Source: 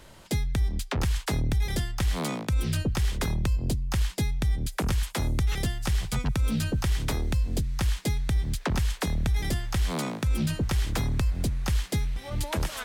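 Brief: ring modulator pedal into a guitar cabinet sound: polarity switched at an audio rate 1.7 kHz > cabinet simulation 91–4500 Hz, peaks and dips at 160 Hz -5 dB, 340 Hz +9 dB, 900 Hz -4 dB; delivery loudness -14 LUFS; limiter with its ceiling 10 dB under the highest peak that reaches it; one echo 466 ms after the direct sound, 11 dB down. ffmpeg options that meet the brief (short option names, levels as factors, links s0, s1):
-af "alimiter=level_in=1.68:limit=0.0631:level=0:latency=1,volume=0.596,aecho=1:1:466:0.282,aeval=exprs='val(0)*sgn(sin(2*PI*1700*n/s))':c=same,highpass=91,equalizer=f=160:t=q:w=4:g=-5,equalizer=f=340:t=q:w=4:g=9,equalizer=f=900:t=q:w=4:g=-4,lowpass=f=4500:w=0.5412,lowpass=f=4500:w=1.3066,volume=7.94"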